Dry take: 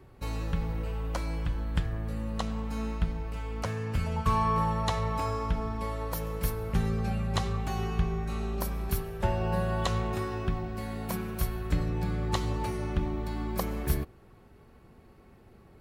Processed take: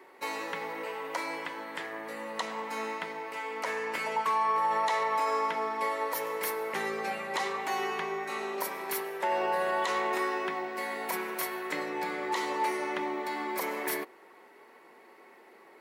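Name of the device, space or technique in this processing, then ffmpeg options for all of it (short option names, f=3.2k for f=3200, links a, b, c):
laptop speaker: -af "highpass=f=340:w=0.5412,highpass=f=340:w=1.3066,equalizer=f=950:t=o:w=0.2:g=10,equalizer=f=2k:t=o:w=0.36:g=11,alimiter=level_in=0.5dB:limit=-24dB:level=0:latency=1:release=28,volume=-0.5dB,volume=4dB"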